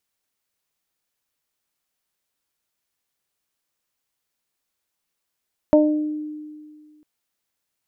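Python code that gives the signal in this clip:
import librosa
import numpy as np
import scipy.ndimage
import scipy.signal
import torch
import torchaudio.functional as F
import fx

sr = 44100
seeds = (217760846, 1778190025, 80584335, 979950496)

y = fx.additive(sr, length_s=1.3, hz=303.0, level_db=-12.5, upper_db=(3.0, -12), decay_s=1.99, upper_decays_s=(0.52, 0.29))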